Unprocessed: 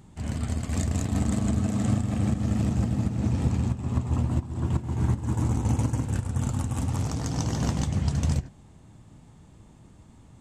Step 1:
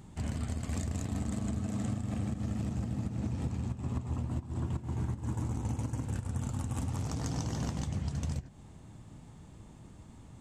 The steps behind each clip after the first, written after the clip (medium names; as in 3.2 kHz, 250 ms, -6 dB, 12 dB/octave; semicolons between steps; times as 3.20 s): compression 6:1, threshold -31 dBFS, peak gain reduction 12.5 dB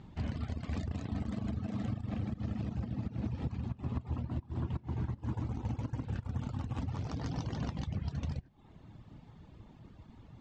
reverb removal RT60 0.86 s; low-pass 4.7 kHz 24 dB/octave